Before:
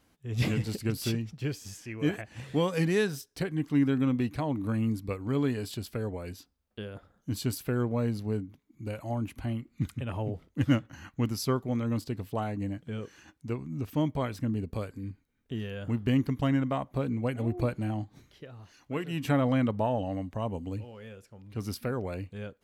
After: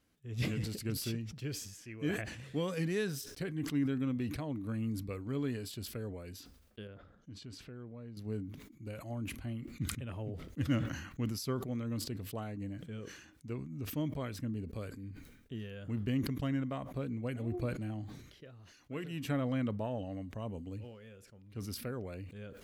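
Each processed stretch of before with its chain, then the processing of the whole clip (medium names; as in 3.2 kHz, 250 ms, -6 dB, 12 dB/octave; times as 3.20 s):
6.87–8.17 s: compression 2:1, threshold -46 dBFS + distance through air 130 m
whole clip: peaking EQ 860 Hz -6.5 dB 0.65 oct; decay stretcher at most 58 dB/s; trim -7.5 dB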